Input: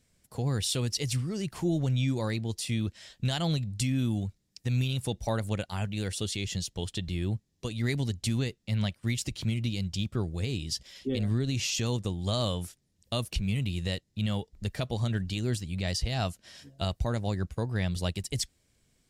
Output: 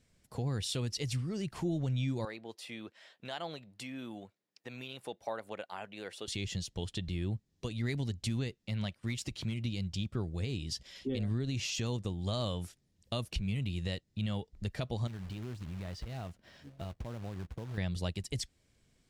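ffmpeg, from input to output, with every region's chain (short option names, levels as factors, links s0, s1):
-filter_complex "[0:a]asettb=1/sr,asplit=3[s0][s1][s2];[s0]atrim=end=2.254[s3];[s1]atrim=start=2.25:end=6.28,asetpts=PTS-STARTPTS,afade=t=in:d=0.004:c=qsin,afade=t=out:st=4.026:d=0.004:c=qsin,highpass=510,equalizer=f=7000:t=o:w=2.3:g=-12.5[s4];[s2]atrim=start=6.276[s5];[s3][s4]acrossfade=d=0.004:c1=hsin:c2=qsin[s6];[s6][s5]acrossfade=d=0.004:c1=qsin:c2=hsin,asettb=1/sr,asplit=3[s7][s8][s9];[s7]atrim=end=8.544[s10];[s8]atrim=start=8.54:end=9.65,asetpts=PTS-STARTPTS,afade=t=in:d=0.004:c=qsin,afade=t=out:st=1.106:d=0.004:c=qsin,lowshelf=f=160:g=-4.5,asoftclip=type=hard:threshold=0.0708[s11];[s9]atrim=start=9.646[s12];[s10][s11]acrossfade=d=0.004:c1=hsin:c2=qsin[s13];[s13][s12]acrossfade=d=0.004:c1=qsin:c2=hsin,asettb=1/sr,asplit=3[s14][s15][s16];[s14]atrim=end=15.074[s17];[s15]atrim=start=15.07:end=17.78,asetpts=PTS-STARTPTS,afade=t=in:d=0.004:c=qsin,afade=t=out:st=2.706:d=0.004:c=qsin,lowpass=f=1400:p=1,acompressor=threshold=0.0141:ratio=4:attack=3.2:release=140:knee=1:detection=peak,acrusher=bits=3:mode=log:mix=0:aa=0.000001[s18];[s16]atrim=start=17.776[s19];[s17][s18]acrossfade=d=0.004:c1=hsin:c2=qsin[s20];[s20][s19]acrossfade=d=0.004:c1=qsin:c2=hsin,highshelf=f=7600:g=-9.5,acompressor=threshold=0.0112:ratio=1.5"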